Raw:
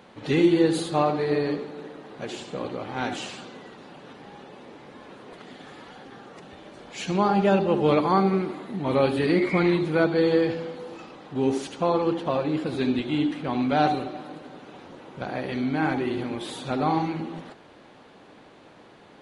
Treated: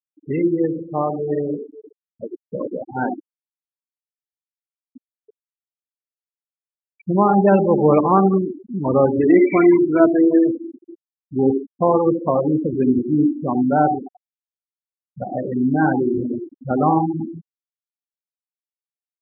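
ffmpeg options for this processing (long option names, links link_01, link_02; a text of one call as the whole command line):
ffmpeg -i in.wav -filter_complex "[0:a]asettb=1/sr,asplit=3[link_01][link_02][link_03];[link_01]atrim=end=4.794[link_04];[link_02]atrim=start=4.79:end=5.36,asetpts=PTS-STARTPTS,afade=type=in:duration=0.004:curve=qsin,afade=type=out:start_time=0.566:duration=0.004:curve=qsin,acontrast=21[link_05];[link_03]atrim=start=5.356[link_06];[link_04][link_05]acrossfade=duration=0.004:curve1=hsin:curve2=qsin[link_07];[link_07][link_06]acrossfade=duration=0.004:curve1=qsin:curve2=hsin,asettb=1/sr,asplit=3[link_08][link_09][link_10];[link_08]atrim=end=9.194[link_11];[link_09]atrim=start=9.19:end=10.94,asetpts=PTS-STARTPTS,afade=type=in:duration=0.004:curve=qsin,afade=type=out:start_time=1.746:duration=0.004:curve=qsin,aecho=1:1:3:0.65,atrim=end_sample=77175[link_12];[link_10]atrim=start=10.936[link_13];[link_11][link_12]acrossfade=duration=0.004:curve1=hsin:curve2=qsin[link_14];[link_14][link_13]acrossfade=duration=0.004:curve1=qsin:curve2=hsin,asplit=2[link_15][link_16];[link_15]atrim=end=14.71,asetpts=PTS-STARTPTS,afade=type=out:start_time=13.43:duration=1.28:silence=0.223872[link_17];[link_16]atrim=start=14.71,asetpts=PTS-STARTPTS,afade=type=in:duration=0.004:curve=hsin:silence=0.223872[link_18];[link_17][link_18]concat=n=2:v=0:a=1,highshelf=frequency=4500:gain=-9,afftfilt=real='re*gte(hypot(re,im),0.1)':imag='im*gte(hypot(re,im),0.1)':win_size=1024:overlap=0.75,dynaudnorm=framelen=110:gausssize=31:maxgain=9dB" out.wav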